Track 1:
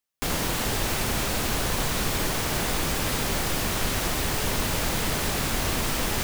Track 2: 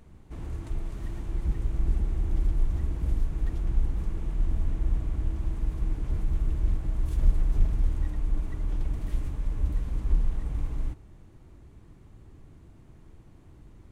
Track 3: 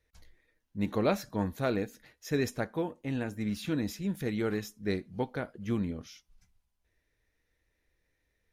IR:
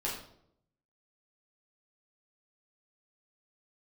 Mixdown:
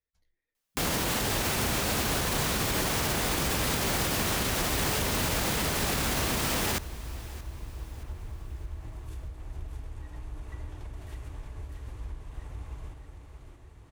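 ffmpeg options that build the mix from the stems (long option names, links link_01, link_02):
-filter_complex "[0:a]highpass=43,adelay=550,volume=1.5dB,asplit=2[link_01][link_02];[link_02]volume=-21.5dB[link_03];[1:a]highpass=68,equalizer=frequency=190:width_type=o:width=1.3:gain=-14,acompressor=threshold=-39dB:ratio=6,adelay=2000,volume=-0.5dB,asplit=3[link_04][link_05][link_06];[link_05]volume=-8dB[link_07];[link_06]volume=-4dB[link_08];[2:a]volume=-18dB[link_09];[3:a]atrim=start_sample=2205[link_10];[link_07][link_10]afir=irnorm=-1:irlink=0[link_11];[link_03][link_08]amix=inputs=2:normalize=0,aecho=0:1:625|1250|1875|2500|3125|3750:1|0.43|0.185|0.0795|0.0342|0.0147[link_12];[link_01][link_04][link_09][link_11][link_12]amix=inputs=5:normalize=0,alimiter=limit=-18.5dB:level=0:latency=1:release=44"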